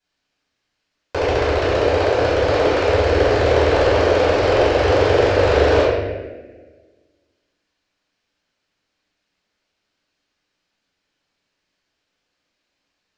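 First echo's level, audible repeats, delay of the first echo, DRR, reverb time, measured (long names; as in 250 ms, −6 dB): no echo audible, no echo audible, no echo audible, −16.0 dB, 1.4 s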